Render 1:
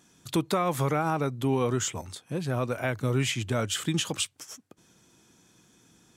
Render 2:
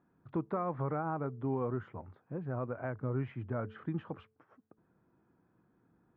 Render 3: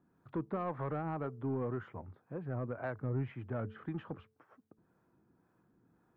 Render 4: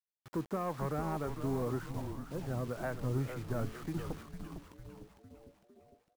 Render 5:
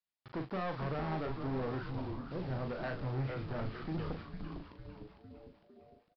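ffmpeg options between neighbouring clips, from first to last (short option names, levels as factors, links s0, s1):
-af "lowpass=f=1500:w=0.5412,lowpass=f=1500:w=1.3066,bandreject=f=218.9:t=h:w=4,bandreject=f=437.8:t=h:w=4,volume=0.398"
-filter_complex "[0:a]acrossover=split=410[s0][s1];[s0]aeval=exprs='val(0)*(1-0.5/2+0.5/2*cos(2*PI*1.9*n/s))':c=same[s2];[s1]aeval=exprs='val(0)*(1-0.5/2-0.5/2*cos(2*PI*1.9*n/s))':c=same[s3];[s2][s3]amix=inputs=2:normalize=0,asoftclip=type=tanh:threshold=0.0355,volume=1.26"
-filter_complex "[0:a]acrusher=bits=8:mix=0:aa=0.000001,asplit=2[s0][s1];[s1]asplit=6[s2][s3][s4][s5][s6][s7];[s2]adelay=454,afreqshift=-140,volume=0.447[s8];[s3]adelay=908,afreqshift=-280,volume=0.232[s9];[s4]adelay=1362,afreqshift=-420,volume=0.12[s10];[s5]adelay=1816,afreqshift=-560,volume=0.0631[s11];[s6]adelay=2270,afreqshift=-700,volume=0.0327[s12];[s7]adelay=2724,afreqshift=-840,volume=0.017[s13];[s8][s9][s10][s11][s12][s13]amix=inputs=6:normalize=0[s14];[s0][s14]amix=inputs=2:normalize=0,volume=1.12"
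-filter_complex "[0:a]aresample=11025,asoftclip=type=hard:threshold=0.0168,aresample=44100,asplit=2[s0][s1];[s1]adelay=38,volume=0.501[s2];[s0][s2]amix=inputs=2:normalize=0,volume=1.12"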